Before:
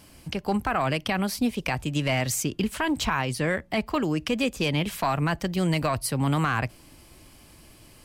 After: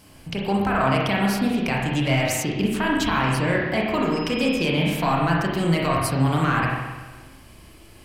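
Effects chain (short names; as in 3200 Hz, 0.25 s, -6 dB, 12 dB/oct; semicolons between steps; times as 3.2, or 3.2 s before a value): 4.12–4.62 whine 5100 Hz -38 dBFS; spring tank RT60 1.3 s, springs 30/41 ms, chirp 35 ms, DRR -3 dB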